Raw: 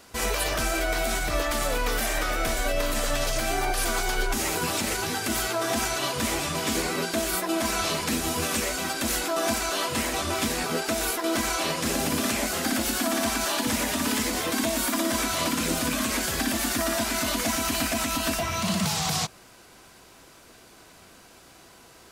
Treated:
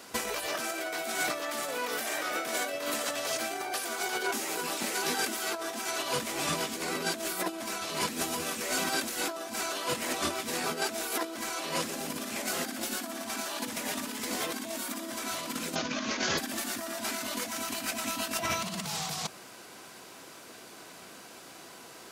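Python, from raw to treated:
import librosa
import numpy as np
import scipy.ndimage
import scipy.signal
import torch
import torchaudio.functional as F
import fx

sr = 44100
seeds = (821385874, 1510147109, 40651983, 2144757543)

y = fx.highpass(x, sr, hz=210.0, slope=12, at=(0.46, 6.11))
y = fx.steep_lowpass(y, sr, hz=6700.0, slope=96, at=(15.74, 16.37), fade=0.02)
y = scipy.signal.sosfilt(scipy.signal.butter(2, 170.0, 'highpass', fs=sr, output='sos'), y)
y = fx.over_compress(y, sr, threshold_db=-31.0, ratio=-0.5)
y = y * librosa.db_to_amplitude(-1.5)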